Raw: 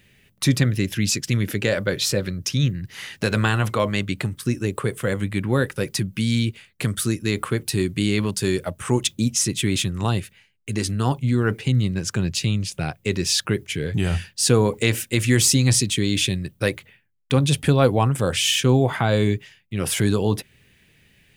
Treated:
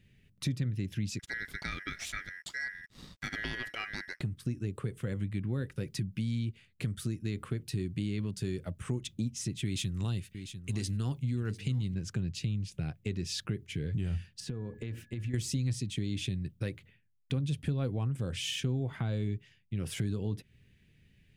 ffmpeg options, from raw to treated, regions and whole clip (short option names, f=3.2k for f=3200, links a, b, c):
-filter_complex "[0:a]asettb=1/sr,asplit=3[a][b][c];[a]atrim=end=1.194[d];[b]atrim=start=1.19:end=4.21,asetpts=PTS-STARTPTS,afade=t=in:d=0.004:c=qsin,afade=t=out:st=3.016:d=0.004:c=qsin,aeval=exprs='val(0)*sin(2*PI*1800*n/s)':c=same,aeval=exprs='sgn(val(0))*max(abs(val(0))-0.00376,0)':c=same[e];[c]atrim=start=4.206[f];[d][e]acrossfade=d=0.004:c1=hsin:c2=qsin[g];[g][f]acrossfade=d=0.004:c1=qsin:c2=hsin,asettb=1/sr,asplit=3[h][i][j];[h]atrim=end=9.654[k];[i]atrim=start=9.65:end=11.95,asetpts=PTS-STARTPTS,afade=t=in:d=0.004:c=qsin,afade=t=out:st=2.296:d=0.004:c=qsin,highshelf=f=2.6k:g=9.5,aecho=1:1:696:0.168,atrim=end_sample=101430[l];[j]atrim=start=11.946[m];[k][l]acrossfade=d=0.004:c1=hsin:c2=qsin[n];[n][m]acrossfade=d=0.004:c1=qsin:c2=hsin,asettb=1/sr,asplit=3[o][p][q];[o]atrim=end=14.404[r];[p]atrim=start=14.4:end=15.34,asetpts=PTS-STARTPTS,afade=t=in:d=0.004:c=qsin,afade=t=out:st=0.936:d=0.004:c=qsin,equalizer=f=9.3k:t=o:w=2.4:g=-13,acompressor=threshold=-26dB:ratio=10:attack=3.2:release=140:knee=1:detection=peak,aeval=exprs='val(0)+0.00282*sin(2*PI*1700*n/s)':c=same[s];[q]atrim=start=15.336[t];[r][s]acrossfade=d=0.004:c1=hsin:c2=qsin[u];[u][t]acrossfade=d=0.004:c1=qsin:c2=hsin,lowpass=f=1.5k:p=1,equalizer=f=850:t=o:w=2.6:g=-14.5,acompressor=threshold=-30dB:ratio=3,volume=-1.5dB"